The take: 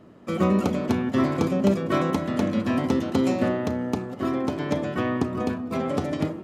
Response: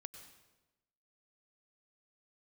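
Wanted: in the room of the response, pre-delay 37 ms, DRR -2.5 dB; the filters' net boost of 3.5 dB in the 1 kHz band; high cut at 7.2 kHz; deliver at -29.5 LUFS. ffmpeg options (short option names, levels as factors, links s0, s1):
-filter_complex "[0:a]lowpass=7200,equalizer=f=1000:t=o:g=4.5,asplit=2[s0][s1];[1:a]atrim=start_sample=2205,adelay=37[s2];[s1][s2]afir=irnorm=-1:irlink=0,volume=2.37[s3];[s0][s3]amix=inputs=2:normalize=0,volume=0.335"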